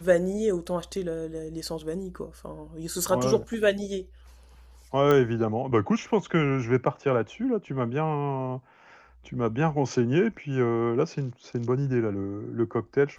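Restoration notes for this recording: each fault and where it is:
5.11 pop -12 dBFS

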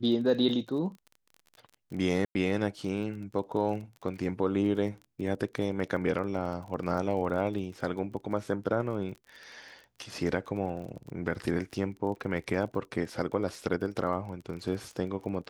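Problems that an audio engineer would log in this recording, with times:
crackle 26/s -39 dBFS
2.25–2.35 gap 0.1 s

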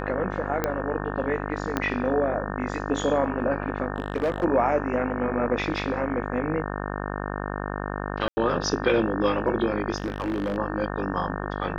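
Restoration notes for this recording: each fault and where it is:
buzz 50 Hz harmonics 36 -31 dBFS
0.64 pop -10 dBFS
1.77 pop -10 dBFS
3.96–4.45 clipped -20 dBFS
8.28–8.37 gap 90 ms
9.96–10.57 clipped -23 dBFS

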